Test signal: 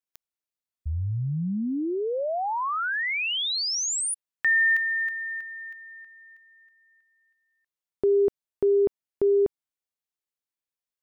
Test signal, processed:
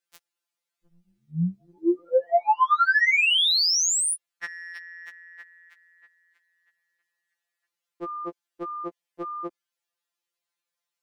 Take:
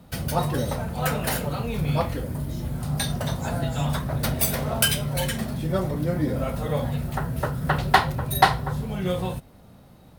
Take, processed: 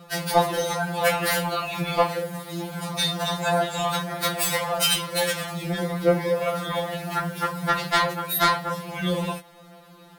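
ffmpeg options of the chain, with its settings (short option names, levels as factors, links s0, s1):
-filter_complex "[0:a]asplit=2[s0][s1];[s1]highpass=f=720:p=1,volume=12.6,asoftclip=type=tanh:threshold=0.891[s2];[s0][s2]amix=inputs=2:normalize=0,lowpass=f=5600:p=1,volume=0.501,afftfilt=real='re*2.83*eq(mod(b,8),0)':imag='im*2.83*eq(mod(b,8),0)':win_size=2048:overlap=0.75,volume=0.562"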